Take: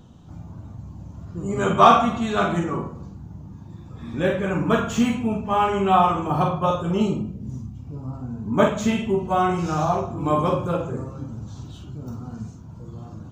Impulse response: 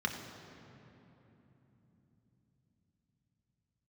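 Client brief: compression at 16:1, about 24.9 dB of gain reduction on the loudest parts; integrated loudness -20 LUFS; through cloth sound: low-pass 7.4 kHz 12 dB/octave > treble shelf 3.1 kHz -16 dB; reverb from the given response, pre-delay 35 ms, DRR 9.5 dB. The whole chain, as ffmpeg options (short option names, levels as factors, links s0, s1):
-filter_complex "[0:a]acompressor=threshold=0.0224:ratio=16,asplit=2[s0][s1];[1:a]atrim=start_sample=2205,adelay=35[s2];[s1][s2]afir=irnorm=-1:irlink=0,volume=0.168[s3];[s0][s3]amix=inputs=2:normalize=0,lowpass=7400,highshelf=f=3100:g=-16,volume=7.5"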